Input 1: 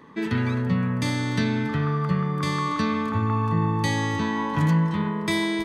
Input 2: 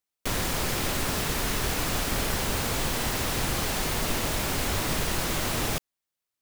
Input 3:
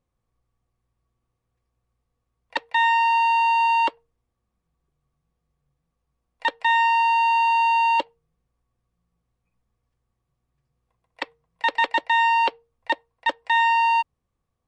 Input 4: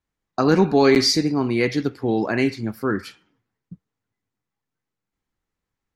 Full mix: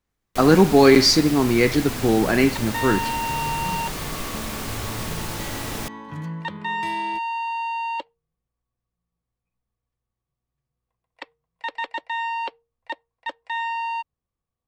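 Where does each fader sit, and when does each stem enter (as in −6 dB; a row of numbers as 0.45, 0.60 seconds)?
−11.5, −3.0, −8.0, +2.5 decibels; 1.55, 0.10, 0.00, 0.00 seconds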